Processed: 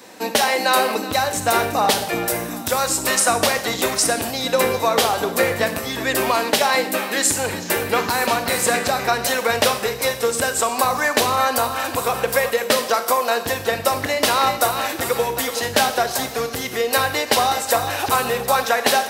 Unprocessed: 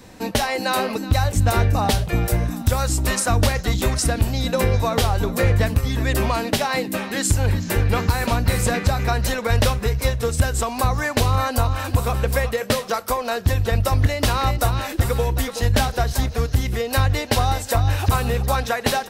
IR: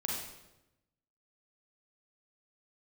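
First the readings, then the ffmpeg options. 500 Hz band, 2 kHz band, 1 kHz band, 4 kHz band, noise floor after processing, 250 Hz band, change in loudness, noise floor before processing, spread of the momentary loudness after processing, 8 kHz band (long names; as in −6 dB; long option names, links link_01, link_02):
+4.0 dB, +5.0 dB, +5.0 dB, +5.0 dB, −30 dBFS, −2.0 dB, +1.5 dB, −32 dBFS, 5 LU, +6.0 dB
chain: -filter_complex "[0:a]highpass=360,asplit=2[link_01][link_02];[link_02]highshelf=frequency=9300:gain=6.5[link_03];[1:a]atrim=start_sample=2205[link_04];[link_03][link_04]afir=irnorm=-1:irlink=0,volume=-8.5dB[link_05];[link_01][link_05]amix=inputs=2:normalize=0,volume=2dB"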